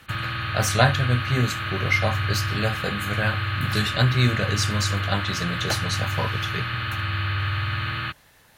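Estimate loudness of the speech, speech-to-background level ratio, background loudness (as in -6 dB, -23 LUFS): -25.5 LUFS, 1.5 dB, -27.0 LUFS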